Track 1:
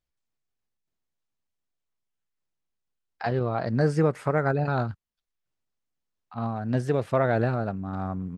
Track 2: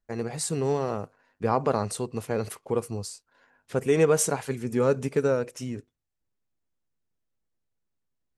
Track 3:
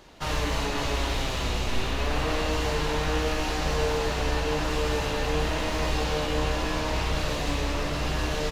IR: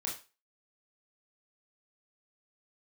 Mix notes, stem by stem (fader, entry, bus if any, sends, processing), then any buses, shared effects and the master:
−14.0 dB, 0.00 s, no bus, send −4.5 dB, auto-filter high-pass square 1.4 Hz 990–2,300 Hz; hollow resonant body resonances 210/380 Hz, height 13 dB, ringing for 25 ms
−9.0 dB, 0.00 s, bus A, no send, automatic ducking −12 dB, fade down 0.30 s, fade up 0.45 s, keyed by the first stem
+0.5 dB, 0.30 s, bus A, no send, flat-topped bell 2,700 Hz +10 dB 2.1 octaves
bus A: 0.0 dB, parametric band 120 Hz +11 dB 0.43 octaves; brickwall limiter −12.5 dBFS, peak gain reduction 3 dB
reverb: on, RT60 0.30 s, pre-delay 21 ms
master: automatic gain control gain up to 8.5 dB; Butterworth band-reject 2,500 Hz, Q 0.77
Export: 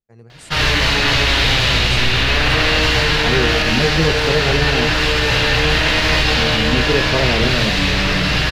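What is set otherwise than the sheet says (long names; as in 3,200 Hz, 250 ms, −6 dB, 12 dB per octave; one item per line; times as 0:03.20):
stem 1: missing auto-filter high-pass square 1.4 Hz 990–2,300 Hz
stem 2 −9.0 dB → −16.5 dB
master: missing Butterworth band-reject 2,500 Hz, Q 0.77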